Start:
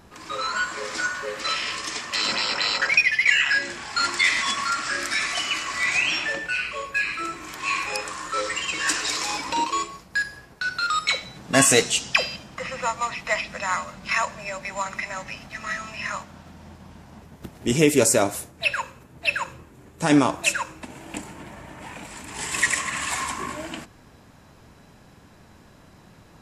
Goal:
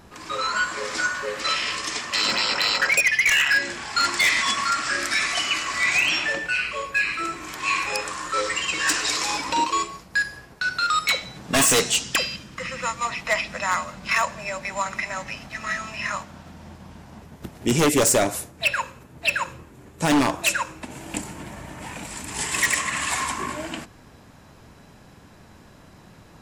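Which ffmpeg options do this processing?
-filter_complex "[0:a]asettb=1/sr,asplit=3[a][b][c];[a]atrim=end=12.034[d];[b]atrim=start=12.03:end=13.05,asetpts=PTS-STARTPTS,afade=t=in:d=0.004:c=qsin,afade=t=out:st=1.016:d=0.004:c=qsin,equalizer=f=730:w=1.9:g=-10.5[e];[c]atrim=start=13.046[f];[d][e]acrossfade=d=0.004:c1=hsin:c2=qsin[g];[g][f]acrossfade=d=0.004:c1=qsin:c2=hsin,aeval=exprs='0.2*(abs(mod(val(0)/0.2+3,4)-2)-1)':c=same,asettb=1/sr,asplit=3[h][i][j];[h]atrim=end=20.914[k];[i]atrim=start=20.91:end=22.43,asetpts=PTS-STARTPTS,afade=t=in:d=0.004:c=qsin,afade=t=out:st=1.516:d=0.004:c=qsin,bass=f=250:g=3,treble=f=4k:g=5[l];[j]atrim=start=22.426[m];[k][l]acrossfade=d=0.004:c1=hsin:c2=qsin[n];[n][m]acrossfade=d=0.004:c1=qsin:c2=hsin,volume=2dB"

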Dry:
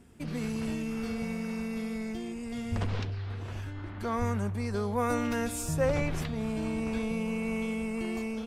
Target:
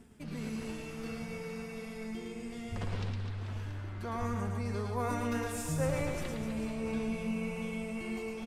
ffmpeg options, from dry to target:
-af "areverse,acompressor=mode=upward:threshold=-35dB:ratio=2.5,areverse,flanger=delay=4.5:depth=2.8:regen=63:speed=0.29:shape=triangular,aecho=1:1:110|253|438.9|680.6|994.7:0.631|0.398|0.251|0.158|0.1,volume=-1.5dB"

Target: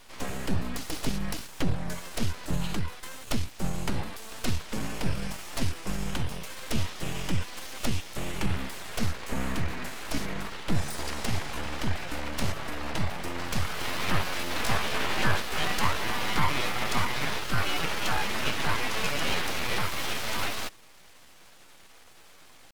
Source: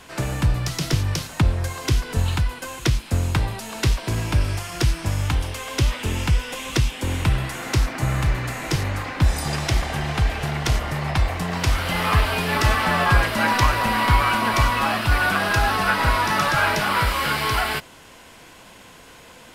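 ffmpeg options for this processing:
-af "atempo=0.86,aeval=exprs='abs(val(0))':c=same,volume=-5.5dB"

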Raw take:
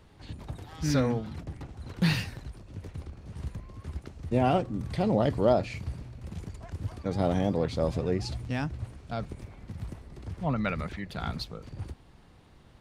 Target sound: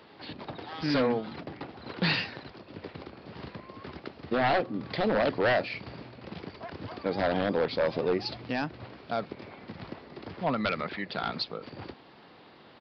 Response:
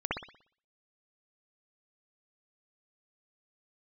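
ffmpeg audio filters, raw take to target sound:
-filter_complex "[0:a]highpass=290,asplit=2[a][b];[b]acompressor=threshold=-43dB:ratio=6,volume=-2dB[c];[a][c]amix=inputs=2:normalize=0,aeval=exprs='0.0794*(abs(mod(val(0)/0.0794+3,4)-2)-1)':c=same,aresample=11025,aresample=44100,volume=3.5dB"

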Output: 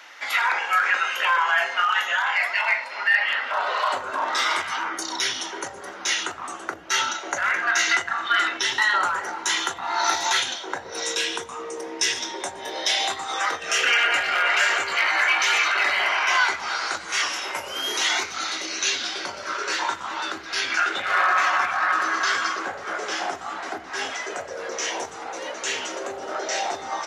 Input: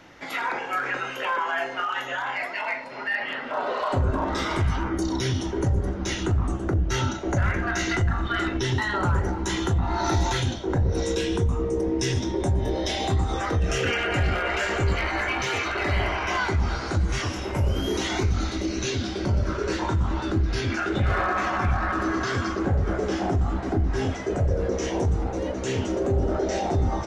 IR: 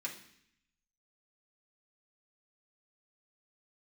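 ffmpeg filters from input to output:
-af "highpass=1.1k,volume=8.5dB"

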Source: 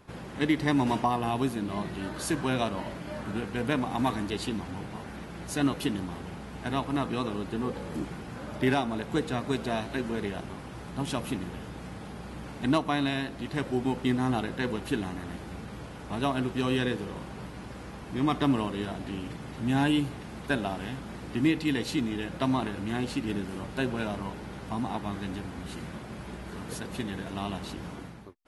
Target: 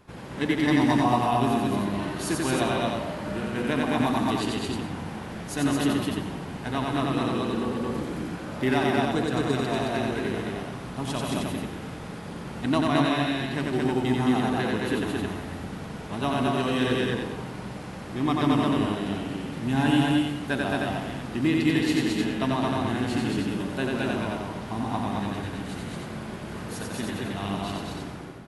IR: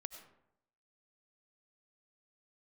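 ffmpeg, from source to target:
-filter_complex "[0:a]aecho=1:1:154.5|218.7:0.282|0.794,asplit=2[a][b];[1:a]atrim=start_sample=2205,adelay=90[c];[b][c]afir=irnorm=-1:irlink=0,volume=2dB[d];[a][d]amix=inputs=2:normalize=0"

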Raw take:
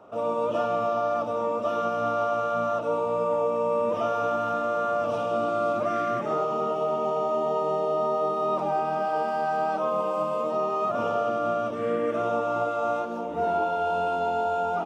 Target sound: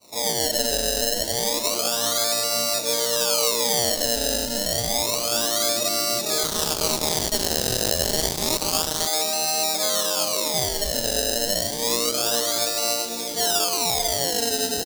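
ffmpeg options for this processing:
-filter_complex "[0:a]adynamicequalizer=threshold=0.0178:dfrequency=420:dqfactor=0.72:tfrequency=420:tqfactor=0.72:attack=5:release=100:ratio=0.375:range=2:mode=boostabove:tftype=bell,acrusher=samples=26:mix=1:aa=0.000001:lfo=1:lforange=26:lforate=0.29,aecho=1:1:292|523:0.133|0.141,asettb=1/sr,asplit=3[a][b][c];[a]atrim=end=6.434[d];[b]atrim=start=6.43:end=9.07,asetpts=PTS-STARTPTS,afade=t=in:d=0.004:c=qsin,afade=t=out:st=2.636:d=0.004:c=qsin,aeval=exprs='0.251*(cos(1*acos(clip(val(0)/0.251,-1,1)))-cos(1*PI/2))+0.0631*(cos(7*acos(clip(val(0)/0.251,-1,1)))-cos(7*PI/2))':c=same[e];[c]atrim=start=9.066[f];[d][e]acrossfade=d=0.004:c1=hsin:c2=qsin[g];[g][f]acrossfade=d=0.004:c1=qsin:c2=hsin,highshelf=f=3.2k:t=q:w=1.5:g=12.5,volume=-4dB"

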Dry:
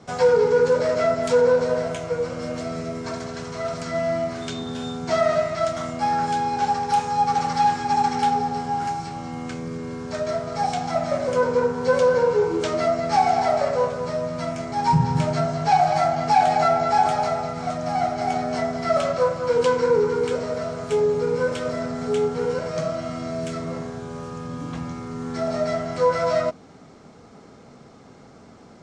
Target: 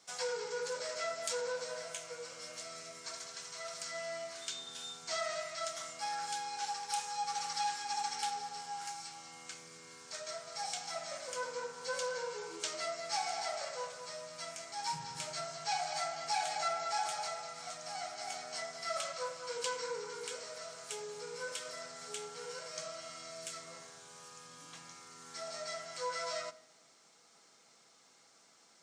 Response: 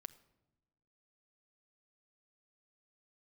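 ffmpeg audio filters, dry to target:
-filter_complex "[0:a]aderivative[a];[1:a]atrim=start_sample=2205[b];[a][b]afir=irnorm=-1:irlink=0,volume=5.5dB"

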